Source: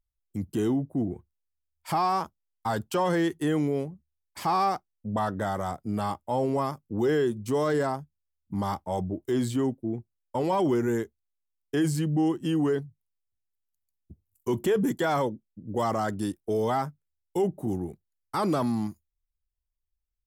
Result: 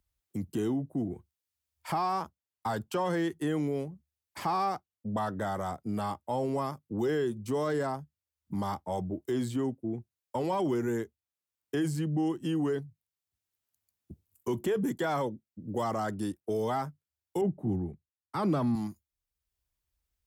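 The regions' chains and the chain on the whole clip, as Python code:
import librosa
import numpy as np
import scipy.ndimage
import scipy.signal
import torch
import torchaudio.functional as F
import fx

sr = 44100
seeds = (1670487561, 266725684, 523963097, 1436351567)

y = fx.chain(x, sr, fx.bass_treble(bass_db=8, treble_db=-10),
    fx.band_widen(depth_pct=70), at=(17.41, 18.75))
y = scipy.signal.sosfilt(scipy.signal.butter(2, 49.0, 'highpass', fs=sr, output='sos'), y)
y = fx.band_squash(y, sr, depth_pct=40)
y = y * 10.0 ** (-4.5 / 20.0)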